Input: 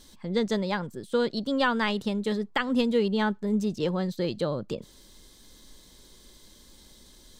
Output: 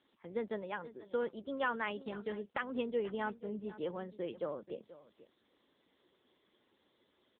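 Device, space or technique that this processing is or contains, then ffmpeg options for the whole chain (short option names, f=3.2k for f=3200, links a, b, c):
satellite phone: -af "highpass=320,lowpass=3k,aecho=1:1:484:0.15,volume=-8dB" -ar 8000 -c:a libopencore_amrnb -b:a 6700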